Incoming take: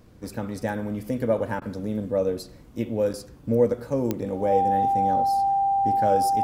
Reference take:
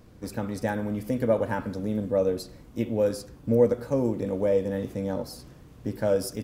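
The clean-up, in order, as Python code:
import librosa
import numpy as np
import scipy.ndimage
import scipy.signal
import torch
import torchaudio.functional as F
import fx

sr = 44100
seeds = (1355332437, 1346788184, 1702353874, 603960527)

y = fx.fix_declick_ar(x, sr, threshold=10.0)
y = fx.notch(y, sr, hz=790.0, q=30.0)
y = fx.fix_interpolate(y, sr, at_s=(3.13,), length_ms=8.7)
y = fx.fix_interpolate(y, sr, at_s=(1.6,), length_ms=15.0)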